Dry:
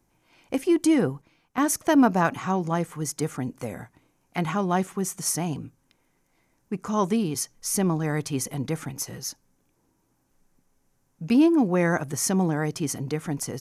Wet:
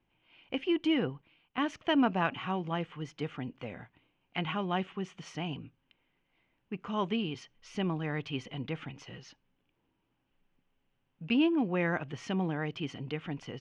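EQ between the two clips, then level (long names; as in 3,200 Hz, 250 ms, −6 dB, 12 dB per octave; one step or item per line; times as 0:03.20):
transistor ladder low-pass 3,200 Hz, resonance 70%
+3.0 dB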